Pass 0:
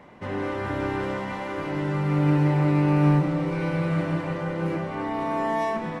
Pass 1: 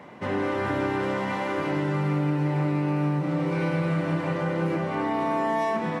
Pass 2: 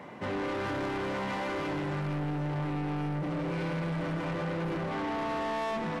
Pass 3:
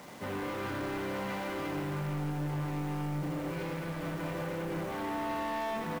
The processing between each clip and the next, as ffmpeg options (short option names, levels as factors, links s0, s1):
-af "highpass=110,acompressor=threshold=0.0501:ratio=5,volume=1.58"
-af "asoftclip=type=tanh:threshold=0.0316"
-af "acrusher=bits=7:mix=0:aa=0.000001,aecho=1:1:82:0.501,volume=0.631"